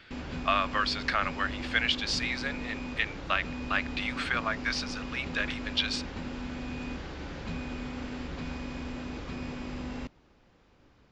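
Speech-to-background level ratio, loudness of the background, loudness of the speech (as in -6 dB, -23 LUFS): 8.0 dB, -38.5 LUFS, -30.5 LUFS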